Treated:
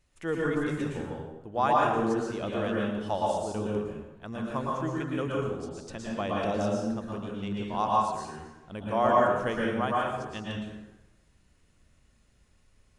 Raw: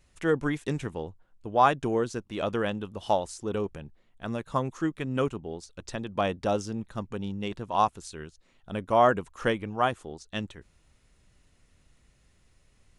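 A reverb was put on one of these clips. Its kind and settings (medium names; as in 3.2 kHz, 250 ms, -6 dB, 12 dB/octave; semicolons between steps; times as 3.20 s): plate-style reverb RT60 1.1 s, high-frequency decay 0.65×, pre-delay 100 ms, DRR -4 dB; trim -6.5 dB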